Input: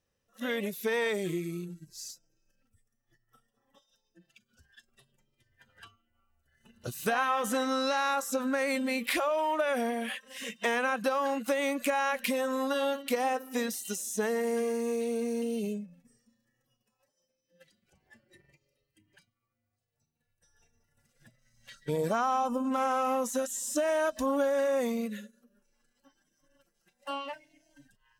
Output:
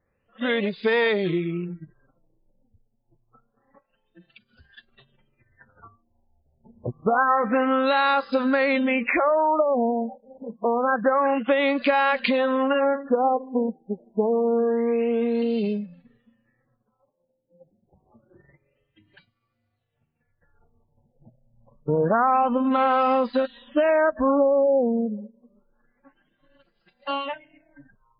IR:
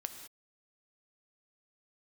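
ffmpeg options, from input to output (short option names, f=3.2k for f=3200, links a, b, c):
-af "afftfilt=real='re*lt(b*sr/1024,920*pow(5100/920,0.5+0.5*sin(2*PI*0.27*pts/sr)))':imag='im*lt(b*sr/1024,920*pow(5100/920,0.5+0.5*sin(2*PI*0.27*pts/sr)))':win_size=1024:overlap=0.75,volume=8.5dB"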